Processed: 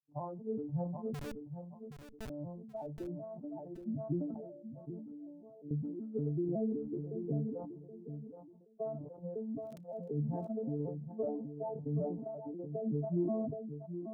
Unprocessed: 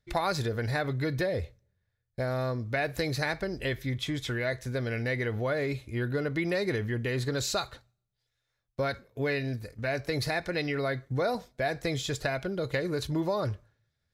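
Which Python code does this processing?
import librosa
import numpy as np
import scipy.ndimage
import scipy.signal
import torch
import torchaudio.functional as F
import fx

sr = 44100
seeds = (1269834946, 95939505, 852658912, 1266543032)

p1 = fx.vocoder_arp(x, sr, chord='minor triad', root=50, every_ms=187)
p2 = fx.noise_reduce_blind(p1, sr, reduce_db=16)
p3 = scipy.signal.sosfilt(scipy.signal.cheby1(6, 1.0, 1000.0, 'lowpass', fs=sr, output='sos'), p2)
p4 = fx.peak_eq(p3, sr, hz=250.0, db=8.5, octaves=0.21)
p5 = fx.schmitt(p4, sr, flips_db=-31.5, at=(1.14, 2.3))
p6 = fx.comb_fb(p5, sr, f0_hz=290.0, decay_s=0.57, harmonics='all', damping=0.0, mix_pct=90, at=(4.34, 5.71))
p7 = fx.dmg_crackle(p6, sr, seeds[0], per_s=68.0, level_db=-60.0, at=(9.58, 10.08), fade=0.02)
p8 = p7 + fx.echo_feedback(p7, sr, ms=774, feedback_pct=17, wet_db=-9.5, dry=0)
p9 = fx.sustainer(p8, sr, db_per_s=46.0)
y = F.gain(torch.from_numpy(p9), -6.0).numpy()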